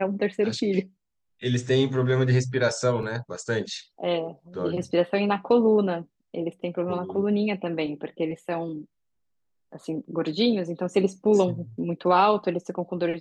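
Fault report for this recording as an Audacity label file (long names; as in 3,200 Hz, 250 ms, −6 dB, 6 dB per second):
3.030000	3.030000	drop-out 2.1 ms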